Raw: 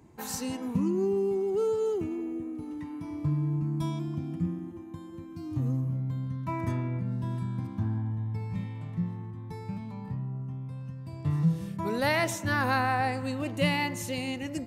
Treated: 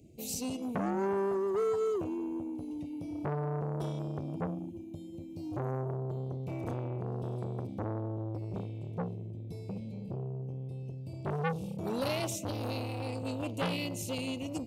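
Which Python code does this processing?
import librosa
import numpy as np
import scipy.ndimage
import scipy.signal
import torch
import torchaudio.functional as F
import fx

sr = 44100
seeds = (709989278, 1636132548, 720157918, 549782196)

y = scipy.signal.sosfilt(scipy.signal.ellip(3, 1.0, 40, [630.0, 2500.0], 'bandstop', fs=sr, output='sos'), x)
y = fx.transformer_sat(y, sr, knee_hz=1300.0)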